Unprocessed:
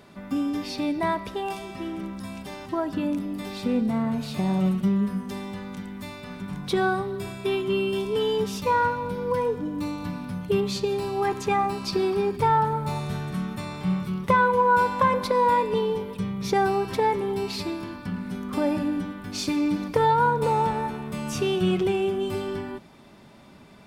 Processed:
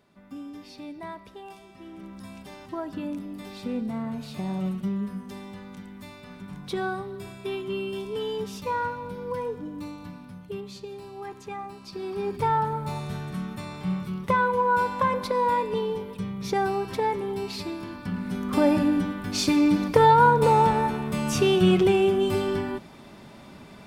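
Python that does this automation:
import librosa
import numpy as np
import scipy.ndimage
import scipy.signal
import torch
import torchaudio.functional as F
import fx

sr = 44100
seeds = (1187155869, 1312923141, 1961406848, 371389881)

y = fx.gain(x, sr, db=fx.line((1.77, -13.0), (2.2, -6.0), (9.7, -6.0), (10.66, -13.0), (11.91, -13.0), (12.32, -3.0), (17.7, -3.0), (18.59, 4.0)))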